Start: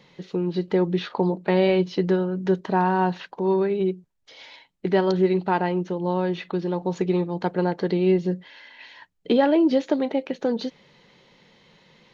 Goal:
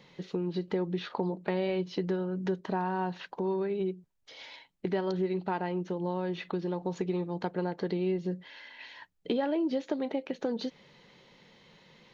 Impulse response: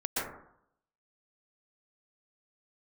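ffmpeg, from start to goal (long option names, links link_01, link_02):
-af "acompressor=threshold=-28dB:ratio=2.5,volume=-2.5dB"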